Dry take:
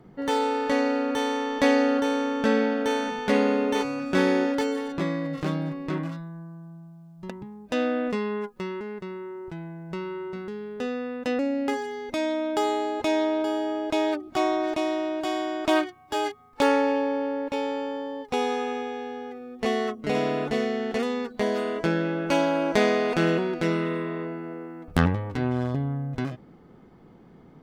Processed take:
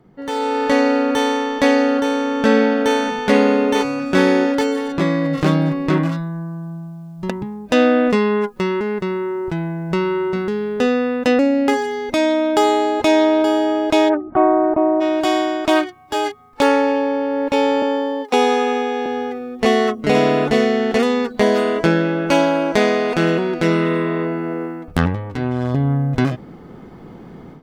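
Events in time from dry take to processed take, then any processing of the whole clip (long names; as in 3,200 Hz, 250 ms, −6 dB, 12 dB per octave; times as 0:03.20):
0:14.08–0:15.00: low-pass filter 1,700 Hz → 1,100 Hz 24 dB per octave
0:17.82–0:19.06: Butterworth high-pass 210 Hz
whole clip: automatic gain control gain up to 15 dB; level −1 dB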